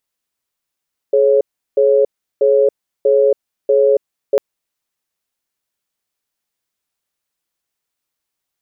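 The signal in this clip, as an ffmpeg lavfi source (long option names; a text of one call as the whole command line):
ffmpeg -f lavfi -i "aevalsrc='0.266*(sin(2*PI*423*t)+sin(2*PI*551*t))*clip(min(mod(t,0.64),0.28-mod(t,0.64))/0.005,0,1)':duration=3.25:sample_rate=44100" out.wav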